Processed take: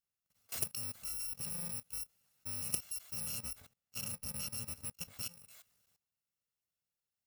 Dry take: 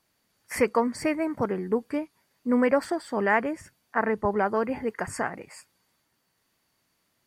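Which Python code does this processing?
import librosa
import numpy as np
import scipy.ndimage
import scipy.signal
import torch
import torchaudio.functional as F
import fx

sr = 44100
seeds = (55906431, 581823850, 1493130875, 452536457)

y = fx.bit_reversed(x, sr, seeds[0], block=128)
y = fx.high_shelf(y, sr, hz=2900.0, db=-5.5, at=(3.26, 5.34))
y = fx.level_steps(y, sr, step_db=18)
y = fx.transformer_sat(y, sr, knee_hz=2300.0)
y = y * 10.0 ** (-3.5 / 20.0)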